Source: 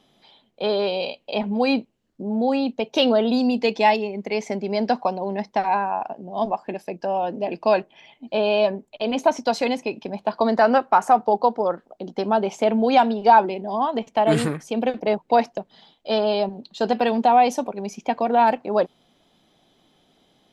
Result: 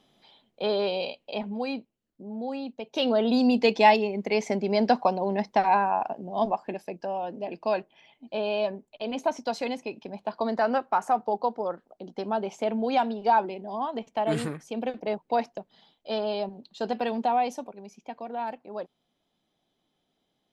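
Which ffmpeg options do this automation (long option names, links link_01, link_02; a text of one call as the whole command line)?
ffmpeg -i in.wav -af "volume=7.5dB,afade=type=out:start_time=0.97:duration=0.76:silence=0.398107,afade=type=in:start_time=2.85:duration=0.68:silence=0.266073,afade=type=out:start_time=6.14:duration=1.04:silence=0.421697,afade=type=out:start_time=17.25:duration=0.64:silence=0.421697" out.wav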